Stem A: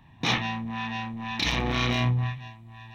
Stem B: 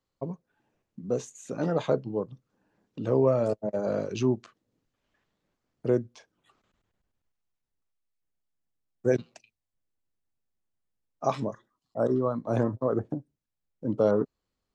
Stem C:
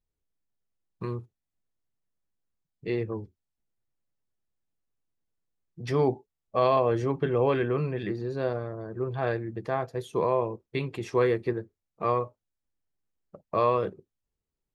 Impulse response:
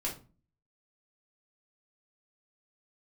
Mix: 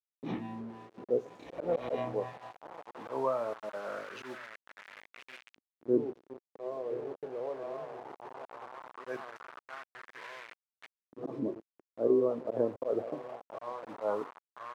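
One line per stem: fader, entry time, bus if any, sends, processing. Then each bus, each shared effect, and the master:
0.0 dB, 0.00 s, send −17.5 dB, echo send −23.5 dB, parametric band 67 Hz +3.5 dB 0.32 octaves; every ending faded ahead of time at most 260 dB per second; automatic ducking −18 dB, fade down 0.35 s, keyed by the third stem
+2.0 dB, 0.00 s, send −20 dB, echo send −16 dB, noise that follows the level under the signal 26 dB
−11.0 dB, 0.00 s, send −15 dB, echo send −6 dB, low-pass filter 1,500 Hz 24 dB per octave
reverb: on, RT60 0.35 s, pre-delay 3 ms
echo: repeating echo 1,028 ms, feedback 53%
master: volume swells 101 ms; bit reduction 6 bits; auto-filter band-pass saw up 0.18 Hz 270–2,600 Hz

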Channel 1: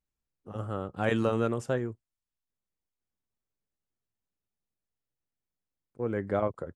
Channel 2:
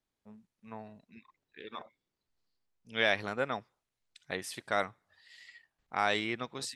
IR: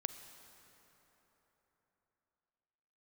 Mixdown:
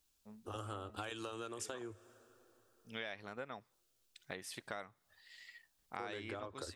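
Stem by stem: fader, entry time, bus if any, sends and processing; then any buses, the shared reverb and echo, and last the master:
+1.5 dB, 0.00 s, send −15 dB, parametric band 2,000 Hz −13 dB 0.28 octaves; downward compressor, threshold −30 dBFS, peak gain reduction 8.5 dB; drawn EQ curve 100 Hz 0 dB, 150 Hz −28 dB, 300 Hz +1 dB, 530 Hz −3 dB, 3,600 Hz +14 dB
−2.5 dB, 0.00 s, no send, no processing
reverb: on, RT60 4.0 s, pre-delay 33 ms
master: downward compressor 5 to 1, threshold −42 dBFS, peak gain reduction 15.5 dB

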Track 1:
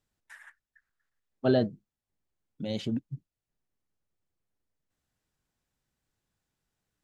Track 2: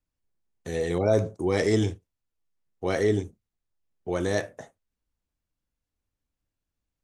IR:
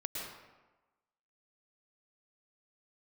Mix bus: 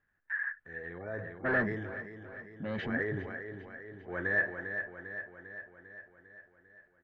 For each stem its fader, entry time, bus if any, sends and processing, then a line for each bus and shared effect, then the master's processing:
−1.0 dB, 0.00 s, no send, echo send −19 dB, soft clipping −29 dBFS, distortion −6 dB
0:02.68 −20 dB → 0:03.28 −12.5 dB, 0.00 s, send −18.5 dB, echo send −7 dB, no processing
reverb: on, RT60 1.2 s, pre-delay 102 ms
echo: repeating echo 399 ms, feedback 60%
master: transient designer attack −2 dB, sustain +6 dB; low-pass with resonance 1,700 Hz, resonance Q 12

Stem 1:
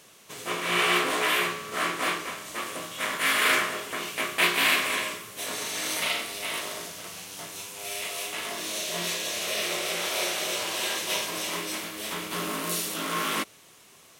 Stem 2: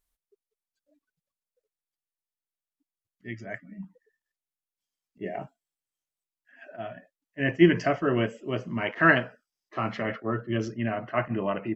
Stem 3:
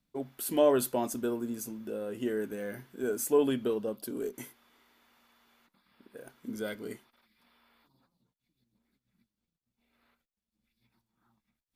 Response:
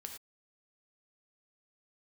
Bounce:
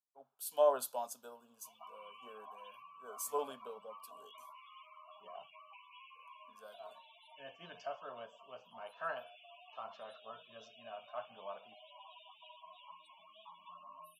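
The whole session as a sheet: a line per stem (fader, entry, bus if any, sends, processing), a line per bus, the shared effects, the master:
−5.0 dB, 1.35 s, no send, downward compressor 12 to 1, threshold −34 dBFS, peak gain reduction 17 dB; phaser with its sweep stopped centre 1,600 Hz, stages 6; spectral peaks only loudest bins 16
−13.0 dB, 0.00 s, send −17 dB, no processing
−8.0 dB, 0.00 s, no send, multiband upward and downward expander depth 100%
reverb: on, pre-delay 3 ms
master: high-pass filter 560 Hz 12 dB per octave; high-shelf EQ 5,000 Hz −9 dB; phaser with its sweep stopped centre 820 Hz, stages 4

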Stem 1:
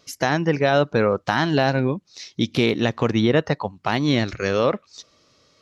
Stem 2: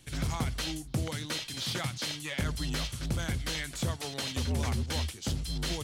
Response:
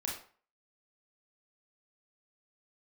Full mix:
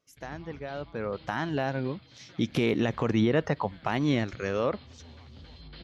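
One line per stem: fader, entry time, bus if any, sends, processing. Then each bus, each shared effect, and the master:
0:00.80 −19 dB → 0:01.23 −10 dB → 0:02.14 −10 dB → 0:02.58 −1 dB → 0:03.64 −1 dB → 0:04.38 −8 dB, 0.00 s, no send, no echo send, parametric band 4,300 Hz −9.5 dB 0.64 octaves
−15.5 dB, 0.10 s, send −11.5 dB, echo send −4.5 dB, Butterworth low-pass 4,800 Hz 96 dB per octave; automatic ducking −17 dB, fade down 1.90 s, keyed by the first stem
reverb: on, RT60 0.45 s, pre-delay 26 ms
echo: repeating echo 442 ms, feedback 36%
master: brickwall limiter −14.5 dBFS, peak gain reduction 7.5 dB

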